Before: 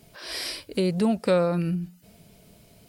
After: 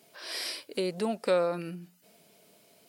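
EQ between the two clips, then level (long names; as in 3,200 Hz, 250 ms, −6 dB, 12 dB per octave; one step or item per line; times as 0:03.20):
high-pass filter 330 Hz 12 dB per octave
−3.0 dB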